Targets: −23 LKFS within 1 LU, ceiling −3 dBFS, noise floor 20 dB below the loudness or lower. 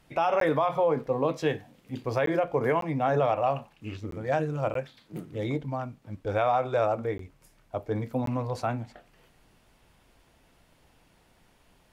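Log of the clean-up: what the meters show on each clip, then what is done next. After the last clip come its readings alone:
number of dropouts 7; longest dropout 13 ms; integrated loudness −28.5 LKFS; sample peak −15.0 dBFS; target loudness −23.0 LKFS
→ repair the gap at 0:00.40/0:02.26/0:02.81/0:04.11/0:04.74/0:07.18/0:08.26, 13 ms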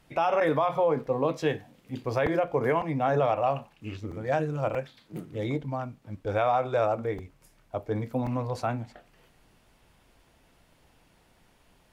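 number of dropouts 0; integrated loudness −28.5 LKFS; sample peak −15.0 dBFS; target loudness −23.0 LKFS
→ level +5.5 dB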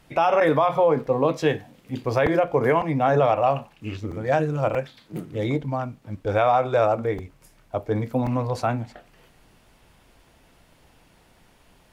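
integrated loudness −23.0 LKFS; sample peak −9.5 dBFS; background noise floor −58 dBFS

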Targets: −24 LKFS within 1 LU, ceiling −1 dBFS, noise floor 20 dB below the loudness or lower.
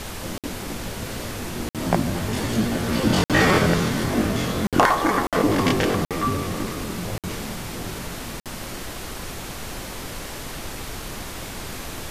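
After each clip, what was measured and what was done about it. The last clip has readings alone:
number of dropouts 8; longest dropout 57 ms; background noise floor −35 dBFS; target noise floor −45 dBFS; integrated loudness −24.5 LKFS; sample peak −3.5 dBFS; target loudness −24.0 LKFS
→ repair the gap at 0:00.38/0:01.69/0:03.24/0:04.67/0:05.27/0:06.05/0:07.18/0:08.40, 57 ms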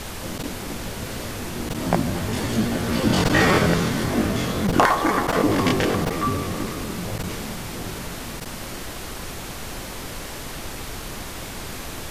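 number of dropouts 0; background noise floor −34 dBFS; target noise floor −45 dBFS
→ noise reduction from a noise print 11 dB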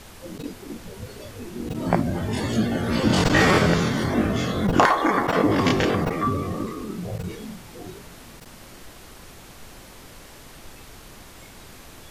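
background noise floor −45 dBFS; integrated loudness −22.0 LKFS; sample peak −3.0 dBFS; target loudness −24.0 LKFS
→ level −2 dB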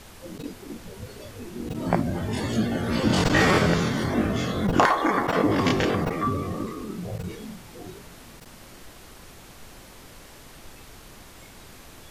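integrated loudness −24.0 LKFS; sample peak −5.0 dBFS; background noise floor −47 dBFS

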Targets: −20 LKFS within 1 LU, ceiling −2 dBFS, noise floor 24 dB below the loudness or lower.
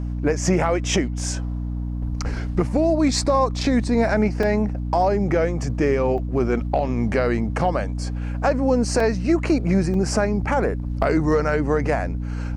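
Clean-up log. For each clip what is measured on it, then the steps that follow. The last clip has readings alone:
number of dropouts 4; longest dropout 3.2 ms; mains hum 60 Hz; hum harmonics up to 300 Hz; level of the hum −24 dBFS; integrated loudness −21.5 LKFS; sample peak −7.5 dBFS; target loudness −20.0 LKFS
→ repair the gap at 0:04.43/0:06.18/0:09.00/0:09.94, 3.2 ms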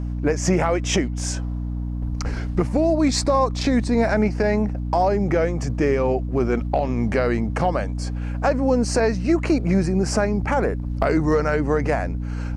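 number of dropouts 0; mains hum 60 Hz; hum harmonics up to 300 Hz; level of the hum −24 dBFS
→ hum removal 60 Hz, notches 5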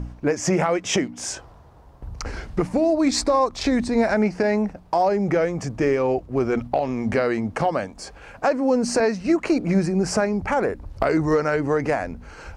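mains hum none found; integrated loudness −22.5 LKFS; sample peak −7.0 dBFS; target loudness −20.0 LKFS
→ level +2.5 dB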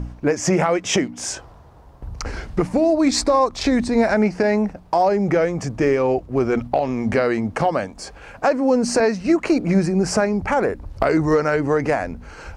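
integrated loudness −20.0 LKFS; sample peak −4.5 dBFS; background noise floor −44 dBFS

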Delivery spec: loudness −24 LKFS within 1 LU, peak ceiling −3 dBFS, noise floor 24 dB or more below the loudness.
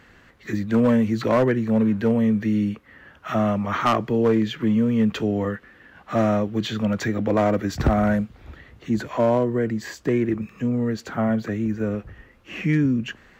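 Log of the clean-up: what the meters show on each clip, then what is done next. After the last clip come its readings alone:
share of clipped samples 0.6%; peaks flattened at −12.5 dBFS; integrated loudness −22.5 LKFS; sample peak −12.5 dBFS; target loudness −24.0 LKFS
→ clipped peaks rebuilt −12.5 dBFS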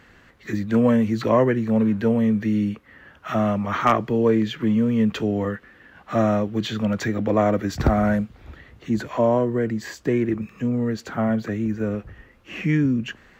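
share of clipped samples 0.0%; integrated loudness −22.5 LKFS; sample peak −3.5 dBFS; target loudness −24.0 LKFS
→ level −1.5 dB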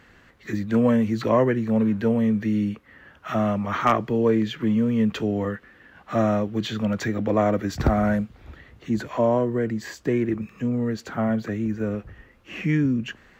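integrated loudness −24.0 LKFS; sample peak −5.0 dBFS; background noise floor −54 dBFS

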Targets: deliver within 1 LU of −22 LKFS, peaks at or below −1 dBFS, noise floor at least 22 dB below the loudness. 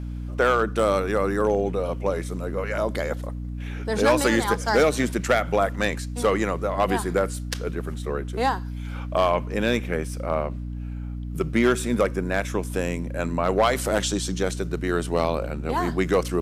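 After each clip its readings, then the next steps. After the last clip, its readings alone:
share of clipped samples 0.5%; peaks flattened at −12.0 dBFS; mains hum 60 Hz; hum harmonics up to 300 Hz; level of the hum −29 dBFS; integrated loudness −24.5 LKFS; sample peak −12.0 dBFS; target loudness −22.0 LKFS
→ clipped peaks rebuilt −12 dBFS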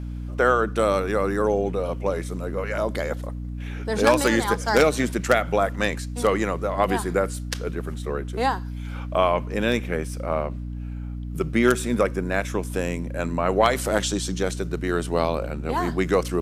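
share of clipped samples 0.0%; mains hum 60 Hz; hum harmonics up to 300 Hz; level of the hum −29 dBFS
→ mains-hum notches 60/120/180/240/300 Hz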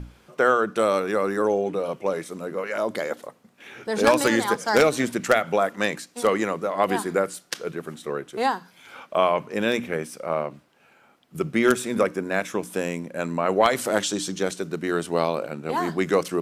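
mains hum none found; integrated loudness −24.5 LKFS; sample peak −2.5 dBFS; target loudness −22.0 LKFS
→ level +2.5 dB
brickwall limiter −1 dBFS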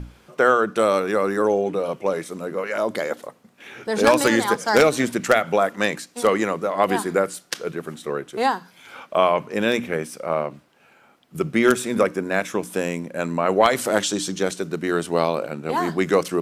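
integrated loudness −22.0 LKFS; sample peak −1.0 dBFS; background noise floor −55 dBFS

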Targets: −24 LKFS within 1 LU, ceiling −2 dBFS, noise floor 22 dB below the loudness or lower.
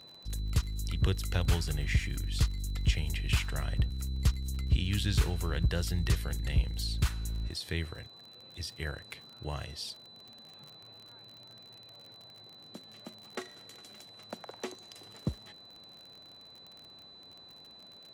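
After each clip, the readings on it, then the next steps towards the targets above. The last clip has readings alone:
crackle rate 44 per second; interfering tone 4,000 Hz; level of the tone −51 dBFS; integrated loudness −33.5 LKFS; sample peak −14.0 dBFS; target loudness −24.0 LKFS
→ click removal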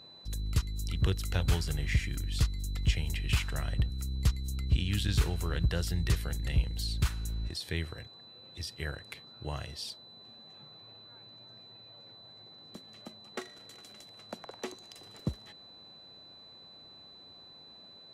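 crackle rate 0 per second; interfering tone 4,000 Hz; level of the tone −51 dBFS
→ notch filter 4,000 Hz, Q 30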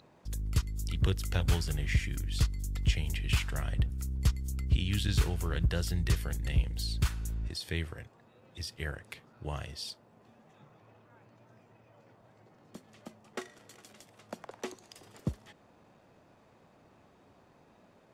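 interfering tone none found; integrated loudness −33.5 LKFS; sample peak −14.5 dBFS; target loudness −24.0 LKFS
→ level +9.5 dB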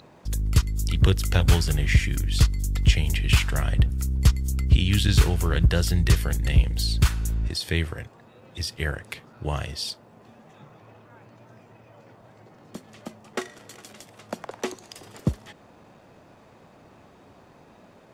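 integrated loudness −24.0 LKFS; sample peak −5.0 dBFS; background noise floor −53 dBFS

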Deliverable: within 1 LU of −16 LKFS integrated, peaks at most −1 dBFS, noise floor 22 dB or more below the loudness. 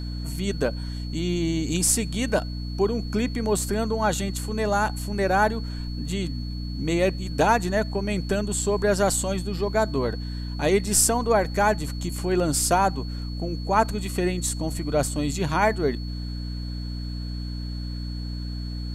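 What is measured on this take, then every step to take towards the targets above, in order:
mains hum 60 Hz; hum harmonics up to 300 Hz; level of the hum −29 dBFS; interfering tone 4,400 Hz; level of the tone −42 dBFS; integrated loudness −25.0 LKFS; sample peak −5.5 dBFS; target loudness −16.0 LKFS
→ hum removal 60 Hz, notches 5
notch filter 4,400 Hz, Q 30
level +9 dB
brickwall limiter −1 dBFS

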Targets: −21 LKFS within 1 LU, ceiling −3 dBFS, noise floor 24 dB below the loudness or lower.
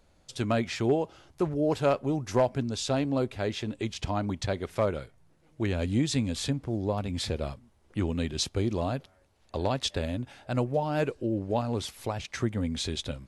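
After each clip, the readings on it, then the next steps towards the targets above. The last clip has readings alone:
integrated loudness −30.0 LKFS; sample peak −15.0 dBFS; target loudness −21.0 LKFS
→ level +9 dB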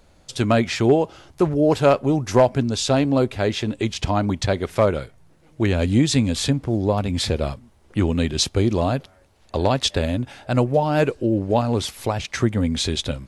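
integrated loudness −21.0 LKFS; sample peak −6.0 dBFS; background noise floor −55 dBFS

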